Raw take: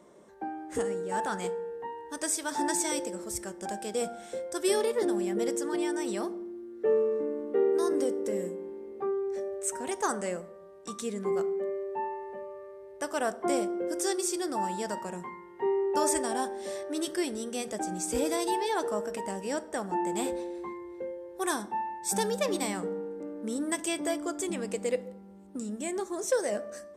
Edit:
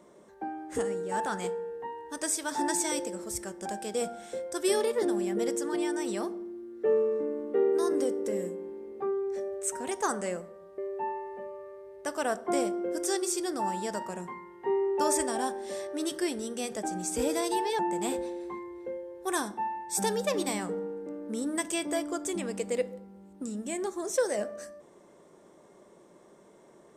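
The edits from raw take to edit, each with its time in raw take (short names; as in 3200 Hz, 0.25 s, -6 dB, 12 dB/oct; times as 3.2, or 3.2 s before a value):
10.78–11.74 cut
18.75–19.93 cut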